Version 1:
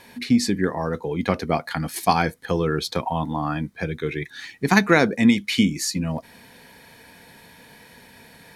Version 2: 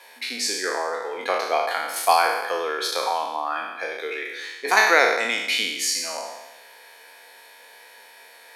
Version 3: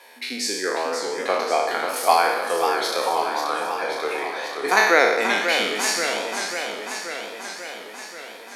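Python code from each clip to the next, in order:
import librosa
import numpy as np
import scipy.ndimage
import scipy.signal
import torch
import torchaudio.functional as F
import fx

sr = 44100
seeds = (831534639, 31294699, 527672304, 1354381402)

y1 = fx.spec_trails(x, sr, decay_s=1.09)
y1 = scipy.signal.sosfilt(scipy.signal.butter(4, 480.0, 'highpass', fs=sr, output='sos'), y1)
y1 = y1 * 10.0 ** (-1.0 / 20.0)
y2 = fx.low_shelf(y1, sr, hz=360.0, db=10.0)
y2 = fx.echo_warbled(y2, sr, ms=537, feedback_pct=68, rate_hz=2.8, cents=157, wet_db=-7.0)
y2 = y2 * 10.0 ** (-1.0 / 20.0)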